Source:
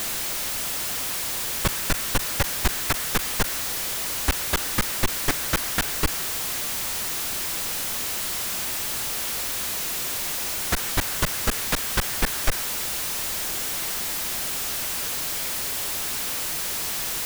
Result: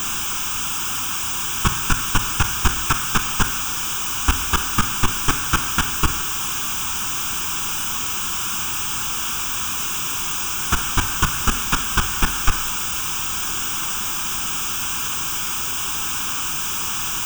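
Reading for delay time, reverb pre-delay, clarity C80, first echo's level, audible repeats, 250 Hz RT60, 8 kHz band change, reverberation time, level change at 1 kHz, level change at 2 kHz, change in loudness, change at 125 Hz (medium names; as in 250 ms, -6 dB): no echo, 7 ms, 16.5 dB, no echo, no echo, 0.60 s, +4.0 dB, 0.60 s, +8.0 dB, +4.5 dB, +4.0 dB, +6.0 dB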